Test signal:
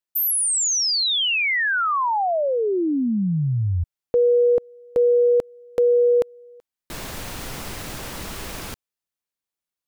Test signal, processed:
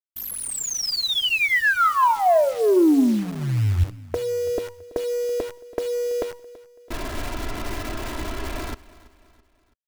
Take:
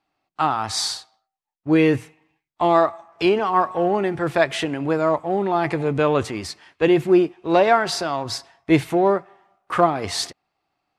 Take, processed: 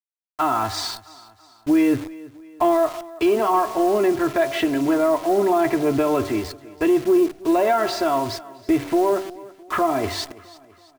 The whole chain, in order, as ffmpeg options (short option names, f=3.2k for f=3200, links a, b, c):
-filter_complex "[0:a]lowpass=f=1.7k:p=1,agate=range=-33dB:threshold=-41dB:ratio=3:release=160:detection=peak,bandreject=f=95.97:t=h:w=4,bandreject=f=191.94:t=h:w=4,bandreject=f=287.91:t=h:w=4,bandreject=f=383.88:t=h:w=4,bandreject=f=479.85:t=h:w=4,bandreject=f=575.82:t=h:w=4,bandreject=f=671.79:t=h:w=4,bandreject=f=767.76:t=h:w=4,bandreject=f=863.73:t=h:w=4,bandreject=f=959.7:t=h:w=4,bandreject=f=1.05567k:t=h:w=4,bandreject=f=1.15164k:t=h:w=4,bandreject=f=1.24761k:t=h:w=4,bandreject=f=1.34358k:t=h:w=4,bandreject=f=1.43955k:t=h:w=4,anlmdn=0.251,aecho=1:1:3:0.86,alimiter=limit=-12.5dB:level=0:latency=1:release=124,acontrast=88,acrusher=bits=6:dc=4:mix=0:aa=0.000001,asplit=2[a][b];[b]aecho=0:1:331|662|993:0.1|0.045|0.0202[c];[a][c]amix=inputs=2:normalize=0,volume=-4.5dB"